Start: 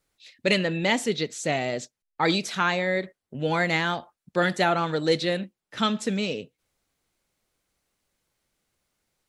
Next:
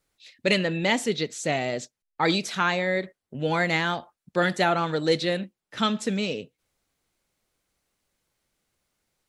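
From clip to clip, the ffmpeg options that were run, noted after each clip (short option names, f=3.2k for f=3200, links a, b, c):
-af anull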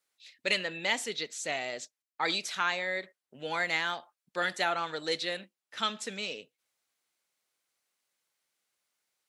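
-af "highpass=f=1.1k:p=1,volume=-3dB"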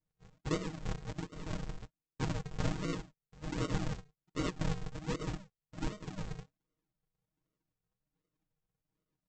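-af "aresample=16000,acrusher=samples=37:mix=1:aa=0.000001:lfo=1:lforange=37:lforate=1.3,aresample=44100,aecho=1:1:6.4:0.8,volume=-5.5dB"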